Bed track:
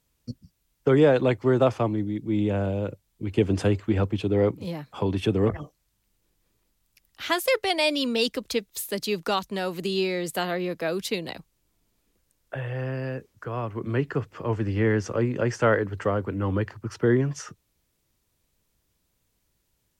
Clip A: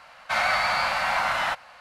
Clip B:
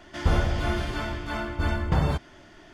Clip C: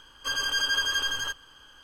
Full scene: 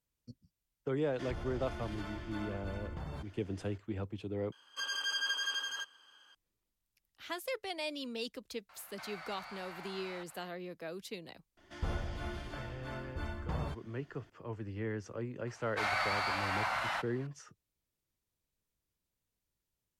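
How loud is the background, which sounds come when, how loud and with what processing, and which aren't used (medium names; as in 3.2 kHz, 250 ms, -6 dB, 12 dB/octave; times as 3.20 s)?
bed track -15.5 dB
1.05 s: add B -11 dB + compression 4:1, threshold -28 dBFS
4.52 s: replace with C -9.5 dB + frequency weighting A
8.69 s: add A -10.5 dB + compression 3:1, threshold -40 dBFS
11.57 s: add B -14 dB
15.47 s: add A -10 dB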